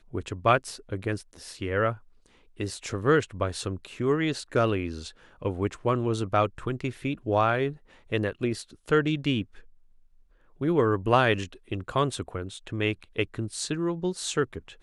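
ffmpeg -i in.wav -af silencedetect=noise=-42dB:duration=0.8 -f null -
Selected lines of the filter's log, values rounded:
silence_start: 9.60
silence_end: 10.61 | silence_duration: 1.01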